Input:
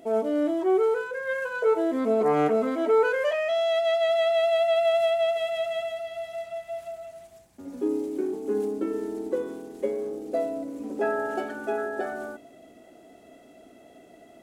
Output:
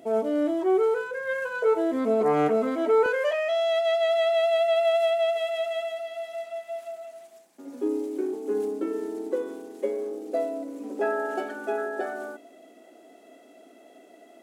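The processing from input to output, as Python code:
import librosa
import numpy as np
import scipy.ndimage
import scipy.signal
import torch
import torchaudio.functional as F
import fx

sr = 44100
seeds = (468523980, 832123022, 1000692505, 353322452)

y = fx.highpass(x, sr, hz=fx.steps((0.0, 57.0), (3.06, 250.0)), slope=24)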